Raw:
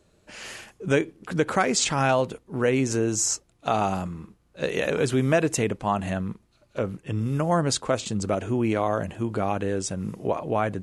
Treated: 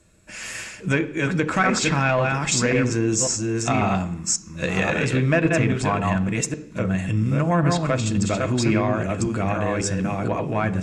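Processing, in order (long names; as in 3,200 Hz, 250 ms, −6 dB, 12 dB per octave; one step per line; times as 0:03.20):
delay that plays each chunk backwards 545 ms, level −3 dB
treble cut that deepens with the level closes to 2,900 Hz, closed at −16.5 dBFS
soft clipping −10.5 dBFS, distortion −24 dB
convolution reverb RT60 0.65 s, pre-delay 3 ms, DRR 9 dB
level +4 dB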